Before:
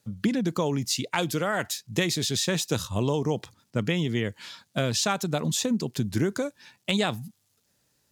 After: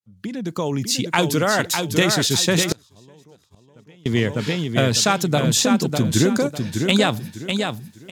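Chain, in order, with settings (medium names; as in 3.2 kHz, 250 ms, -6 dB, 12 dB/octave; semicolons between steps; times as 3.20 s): fade-in on the opening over 1.16 s; feedback delay 601 ms, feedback 29%, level -5.5 dB; 2.72–4.06 s: inverted gate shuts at -27 dBFS, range -31 dB; trim +7.5 dB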